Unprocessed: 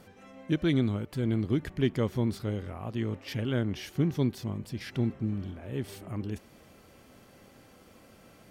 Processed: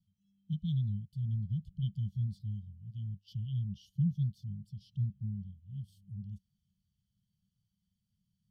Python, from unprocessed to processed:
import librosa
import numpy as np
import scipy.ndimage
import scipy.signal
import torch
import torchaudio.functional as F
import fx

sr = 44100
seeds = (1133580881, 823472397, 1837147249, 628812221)

y = scipy.signal.sosfilt(scipy.signal.cheby1(5, 1.0, [200.0, 3000.0], 'bandstop', fs=sr, output='sos'), x)
y = fx.spectral_expand(y, sr, expansion=1.5)